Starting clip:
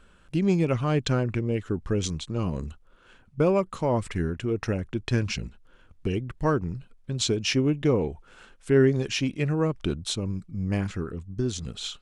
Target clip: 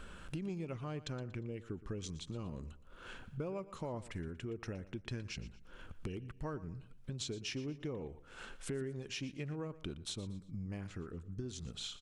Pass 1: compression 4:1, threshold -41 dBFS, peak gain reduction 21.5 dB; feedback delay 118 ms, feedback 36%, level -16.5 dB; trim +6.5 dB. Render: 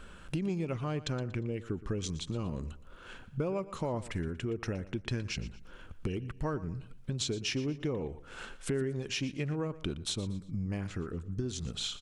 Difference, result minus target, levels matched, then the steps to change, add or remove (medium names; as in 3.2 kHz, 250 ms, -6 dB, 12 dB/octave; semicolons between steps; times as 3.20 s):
compression: peak gain reduction -7.5 dB
change: compression 4:1, threshold -51 dBFS, peak gain reduction 29 dB